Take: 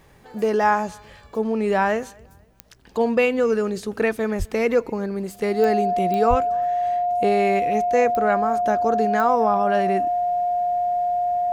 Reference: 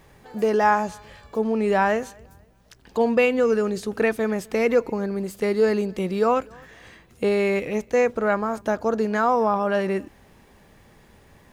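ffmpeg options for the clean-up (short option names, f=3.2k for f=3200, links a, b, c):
-filter_complex "[0:a]adeclick=t=4,bandreject=f=710:w=30,asplit=3[a][b][c];[a]afade=t=out:st=4.38:d=0.02[d];[b]highpass=f=140:w=0.5412,highpass=f=140:w=1.3066,afade=t=in:st=4.38:d=0.02,afade=t=out:st=4.5:d=0.02[e];[c]afade=t=in:st=4.5:d=0.02[f];[d][e][f]amix=inputs=3:normalize=0,asplit=3[g][h][i];[g]afade=t=out:st=6.29:d=0.02[j];[h]highpass=f=140:w=0.5412,highpass=f=140:w=1.3066,afade=t=in:st=6.29:d=0.02,afade=t=out:st=6.41:d=0.02[k];[i]afade=t=in:st=6.41:d=0.02[l];[j][k][l]amix=inputs=3:normalize=0"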